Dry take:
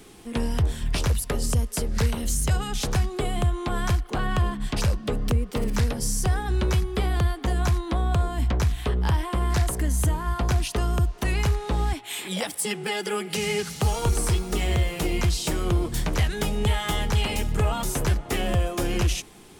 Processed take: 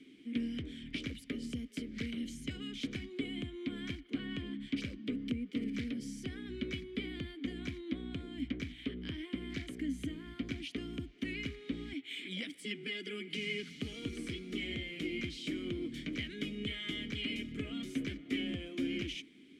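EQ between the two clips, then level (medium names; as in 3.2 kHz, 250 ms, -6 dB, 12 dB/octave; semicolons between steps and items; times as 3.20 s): vowel filter i; +2.5 dB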